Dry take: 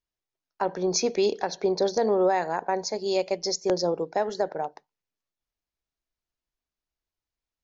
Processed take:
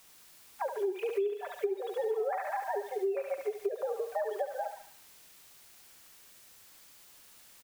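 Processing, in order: sine-wave speech; comb 5.1 ms, depth 57%; added noise white -56 dBFS; thinning echo 71 ms, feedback 67%, high-pass 990 Hz, level -4.5 dB; compressor 8:1, threshold -26 dBFS, peak gain reduction 15 dB; gain -3 dB

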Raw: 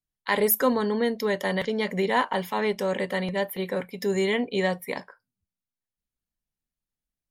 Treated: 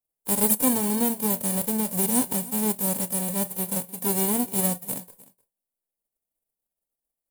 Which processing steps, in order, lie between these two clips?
spectral whitening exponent 0.1; band shelf 2700 Hz -15.5 dB 2.9 oct; echo 0.304 s -20.5 dB; gain +3 dB

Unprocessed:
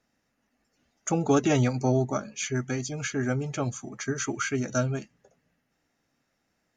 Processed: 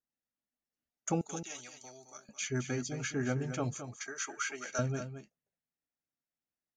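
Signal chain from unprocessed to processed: gate -39 dBFS, range -20 dB; 1.21–2.29 differentiator; 3.74–4.79 HPF 670 Hz 12 dB/oct; echo 0.217 s -10 dB; gain -5.5 dB

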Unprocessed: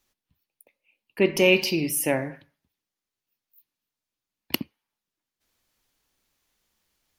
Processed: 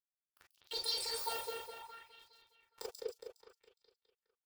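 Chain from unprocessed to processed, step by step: median-filter separation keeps percussive; HPF 180 Hz 24 dB/oct; level quantiser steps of 22 dB; robotiser 264 Hz; companded quantiser 4-bit; tempo 0.93×; on a send: split-band echo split 2500 Hz, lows 0.358 s, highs 0.238 s, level -3 dB; on the sum: non-linear reverb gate 90 ms rising, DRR 1.5 dB; speed mistake 45 rpm record played at 78 rpm; LFO bell 0.64 Hz 460–4300 Hz +11 dB; gain +2 dB

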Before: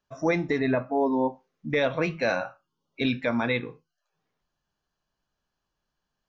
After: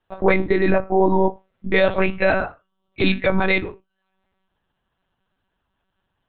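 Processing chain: monotone LPC vocoder at 8 kHz 190 Hz; gain +8 dB

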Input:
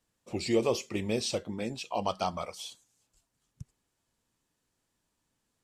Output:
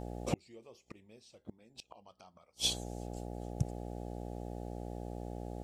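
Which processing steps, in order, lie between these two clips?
buzz 60 Hz, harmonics 14, -55 dBFS -3 dB/oct; flipped gate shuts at -29 dBFS, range -40 dB; gain +12.5 dB

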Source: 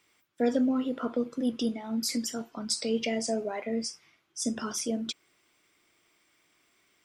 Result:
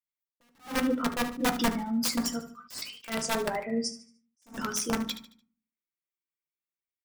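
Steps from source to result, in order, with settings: per-bin expansion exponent 1.5; gate with hold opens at -45 dBFS; 2.39–3.08 elliptic high-pass 1200 Hz; wrapped overs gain 25 dB; feedback echo 74 ms, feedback 37%, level -14 dB; on a send at -5.5 dB: reverb RT60 0.45 s, pre-delay 3 ms; on the sum: attack slew limiter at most 200 dB/s; gain +4.5 dB

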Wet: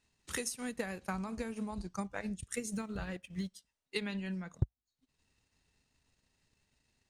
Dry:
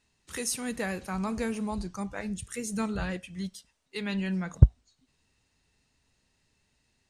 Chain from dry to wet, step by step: compressor 10:1, threshold -32 dBFS, peak gain reduction 23.5 dB; 2.73–3.48 backlash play -58 dBFS; transient shaper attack +7 dB, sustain -10 dB; gain -4 dB

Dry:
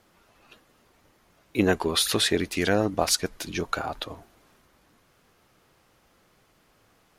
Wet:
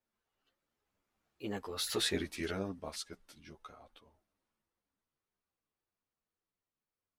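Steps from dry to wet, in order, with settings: Doppler pass-by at 2.11, 33 m/s, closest 8.2 m; ensemble effect; gain -6 dB

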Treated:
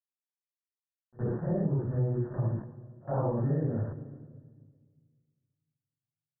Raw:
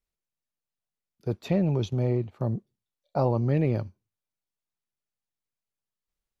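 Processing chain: phase scrambler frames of 0.2 s; sample gate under -39 dBFS; low shelf 200 Hz +5.5 dB; doubler 14 ms -13 dB; pre-echo 63 ms -23 dB; reverb RT60 1.6 s, pre-delay 17 ms, DRR 15.5 dB; compressor 4:1, threshold -26 dBFS, peak gain reduction 9.5 dB; Chebyshev low-pass 1800 Hz, order 8

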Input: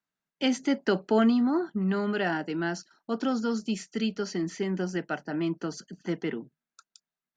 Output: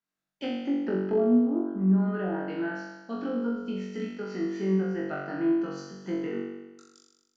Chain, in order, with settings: treble ducked by the level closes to 500 Hz, closed at -22 dBFS; flutter echo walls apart 3.6 m, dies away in 1.1 s; gain -6 dB

